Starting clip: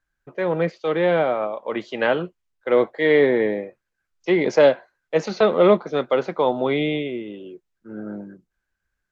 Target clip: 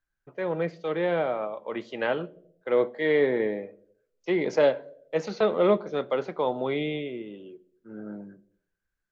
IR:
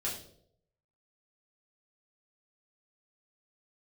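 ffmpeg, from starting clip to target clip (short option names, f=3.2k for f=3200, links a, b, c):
-filter_complex "[0:a]asplit=2[a][b];[1:a]atrim=start_sample=2205,highshelf=f=2.4k:g=-11.5[c];[b][c]afir=irnorm=-1:irlink=0,volume=-16dB[d];[a][d]amix=inputs=2:normalize=0,volume=-7.5dB"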